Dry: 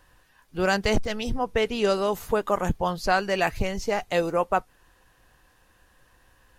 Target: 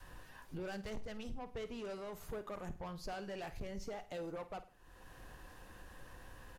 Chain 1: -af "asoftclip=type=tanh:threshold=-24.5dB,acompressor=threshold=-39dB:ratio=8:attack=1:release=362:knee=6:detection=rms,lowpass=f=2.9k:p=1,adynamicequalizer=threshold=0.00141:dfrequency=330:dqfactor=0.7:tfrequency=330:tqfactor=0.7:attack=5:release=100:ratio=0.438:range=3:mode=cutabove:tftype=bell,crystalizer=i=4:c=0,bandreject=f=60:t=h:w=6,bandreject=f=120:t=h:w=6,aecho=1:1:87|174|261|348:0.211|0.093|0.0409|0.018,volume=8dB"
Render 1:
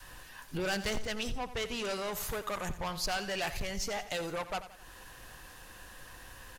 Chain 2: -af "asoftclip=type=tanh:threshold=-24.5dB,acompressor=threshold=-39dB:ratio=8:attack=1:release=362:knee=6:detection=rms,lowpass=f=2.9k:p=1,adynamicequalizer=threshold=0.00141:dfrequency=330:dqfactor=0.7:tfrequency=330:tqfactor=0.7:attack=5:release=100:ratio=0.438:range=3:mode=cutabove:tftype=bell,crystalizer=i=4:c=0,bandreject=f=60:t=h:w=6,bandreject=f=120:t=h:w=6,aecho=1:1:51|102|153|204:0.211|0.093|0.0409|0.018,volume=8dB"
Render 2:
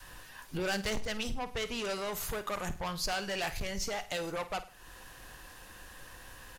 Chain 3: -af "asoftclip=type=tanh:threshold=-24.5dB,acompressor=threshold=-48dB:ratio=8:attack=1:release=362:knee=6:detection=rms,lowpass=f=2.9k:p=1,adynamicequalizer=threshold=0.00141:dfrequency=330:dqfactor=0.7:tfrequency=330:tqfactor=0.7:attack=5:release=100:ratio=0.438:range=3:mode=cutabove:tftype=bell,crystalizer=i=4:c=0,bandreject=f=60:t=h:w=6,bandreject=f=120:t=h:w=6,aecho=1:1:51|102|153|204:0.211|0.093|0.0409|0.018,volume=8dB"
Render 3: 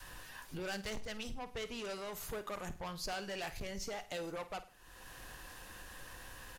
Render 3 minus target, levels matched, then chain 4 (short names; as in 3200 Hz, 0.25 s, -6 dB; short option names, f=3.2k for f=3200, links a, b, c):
4000 Hz band +6.5 dB
-af "asoftclip=type=tanh:threshold=-24.5dB,acompressor=threshold=-48dB:ratio=8:attack=1:release=362:knee=6:detection=rms,lowpass=f=750:p=1,adynamicequalizer=threshold=0.00141:dfrequency=330:dqfactor=0.7:tfrequency=330:tqfactor=0.7:attack=5:release=100:ratio=0.438:range=3:mode=cutabove:tftype=bell,crystalizer=i=4:c=0,bandreject=f=60:t=h:w=6,bandreject=f=120:t=h:w=6,aecho=1:1:51|102|153|204:0.211|0.093|0.0409|0.018,volume=8dB"